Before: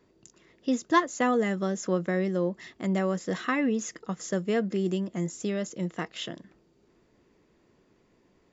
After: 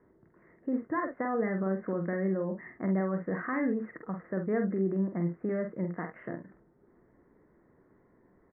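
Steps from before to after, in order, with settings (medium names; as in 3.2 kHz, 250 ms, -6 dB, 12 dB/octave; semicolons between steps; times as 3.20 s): steep low-pass 2 kHz 72 dB/octave; peak limiter -23.5 dBFS, peak gain reduction 11.5 dB; early reflections 47 ms -6 dB, 70 ms -17.5 dB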